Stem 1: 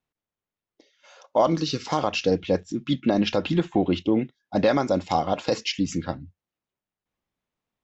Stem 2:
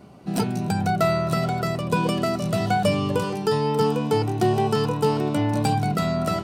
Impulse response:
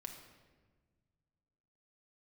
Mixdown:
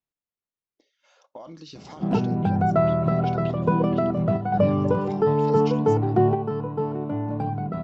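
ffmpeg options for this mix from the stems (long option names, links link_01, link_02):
-filter_complex "[0:a]alimiter=limit=-16dB:level=0:latency=1:release=15,acompressor=threshold=-29dB:ratio=6,volume=-9.5dB,asplit=2[link_01][link_02];[1:a]lowpass=1100,adelay=1750,volume=2dB[link_03];[link_02]apad=whole_len=361106[link_04];[link_03][link_04]sidechaingate=range=-7dB:threshold=-59dB:ratio=16:detection=peak[link_05];[link_01][link_05]amix=inputs=2:normalize=0"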